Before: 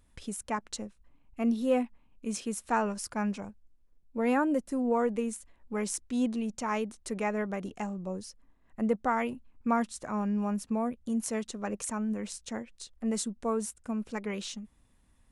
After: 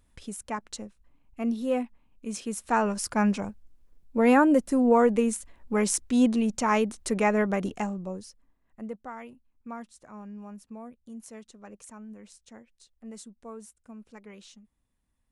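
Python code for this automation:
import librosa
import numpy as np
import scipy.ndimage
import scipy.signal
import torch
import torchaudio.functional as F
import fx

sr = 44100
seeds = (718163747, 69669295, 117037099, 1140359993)

y = fx.gain(x, sr, db=fx.line((2.31, -0.5), (3.19, 7.5), (7.67, 7.5), (8.21, -1.0), (9.11, -12.0)))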